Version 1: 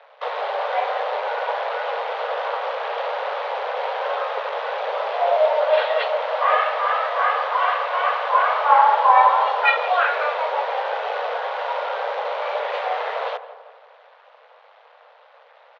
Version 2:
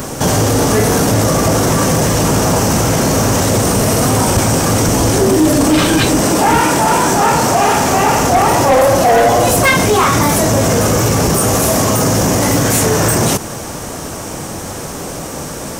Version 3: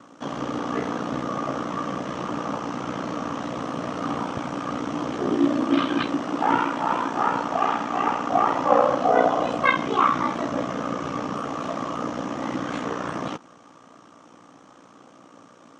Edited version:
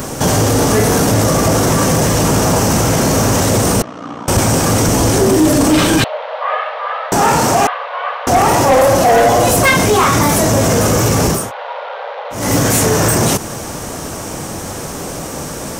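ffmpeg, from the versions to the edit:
-filter_complex "[0:a]asplit=3[a][b][c];[1:a]asplit=5[d][e][f][g][h];[d]atrim=end=3.822[i];[2:a]atrim=start=3.818:end=4.282[j];[e]atrim=start=4.278:end=6.042[k];[a]atrim=start=6.038:end=7.122[l];[f]atrim=start=7.118:end=7.672[m];[b]atrim=start=7.668:end=8.272[n];[g]atrim=start=8.268:end=11.52[o];[c]atrim=start=11.28:end=12.54[p];[h]atrim=start=12.3[q];[i][j]acrossfade=d=0.004:c1=hsin:c2=hsin[r];[r][k]acrossfade=d=0.004:c1=hsin:c2=hsin[s];[s][l]acrossfade=d=0.004:c1=hsin:c2=hsin[t];[t][m]acrossfade=d=0.004:c1=hsin:c2=hsin[u];[u][n]acrossfade=d=0.004:c1=hsin:c2=hsin[v];[v][o]acrossfade=d=0.004:c1=hsin:c2=hsin[w];[w][p]acrossfade=d=0.24:c1=tri:c2=tri[x];[x][q]acrossfade=d=0.24:c1=tri:c2=tri"

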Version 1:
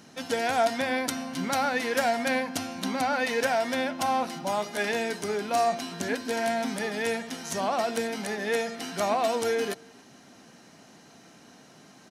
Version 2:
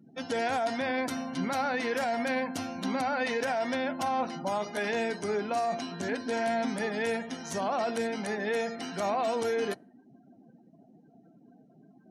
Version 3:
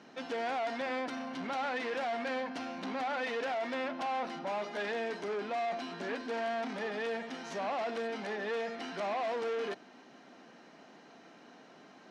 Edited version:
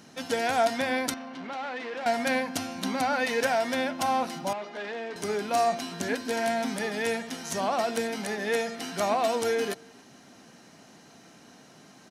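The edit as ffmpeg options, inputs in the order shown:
-filter_complex "[2:a]asplit=2[a][b];[0:a]asplit=3[c][d][e];[c]atrim=end=1.142[f];[a]atrim=start=1.138:end=2.062[g];[d]atrim=start=2.058:end=4.532[h];[b]atrim=start=4.528:end=5.162[i];[e]atrim=start=5.158[j];[f][g]acrossfade=d=0.004:c1=hsin:c2=hsin[k];[k][h]acrossfade=d=0.004:c1=hsin:c2=hsin[l];[l][i]acrossfade=d=0.004:c1=hsin:c2=hsin[m];[m][j]acrossfade=d=0.004:c1=hsin:c2=hsin"

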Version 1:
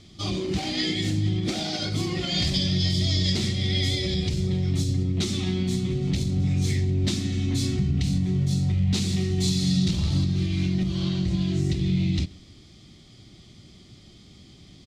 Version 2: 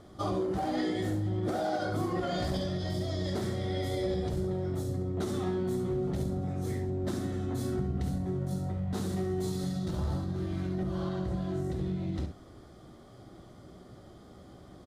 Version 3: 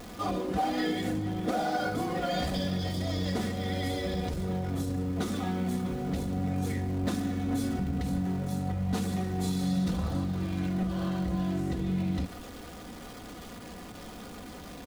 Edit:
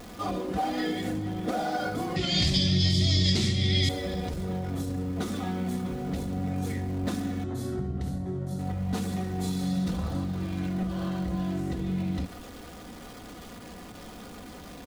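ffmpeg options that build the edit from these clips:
-filter_complex "[2:a]asplit=3[a][b][c];[a]atrim=end=2.162[d];[0:a]atrim=start=2.158:end=3.892[e];[b]atrim=start=3.888:end=7.442[f];[1:a]atrim=start=7.438:end=8.592[g];[c]atrim=start=8.588[h];[d][e]acrossfade=d=0.004:c1=hsin:c2=hsin[i];[i][f]acrossfade=d=0.004:c1=hsin:c2=hsin[j];[j][g]acrossfade=d=0.004:c1=hsin:c2=hsin[k];[k][h]acrossfade=d=0.004:c1=hsin:c2=hsin"

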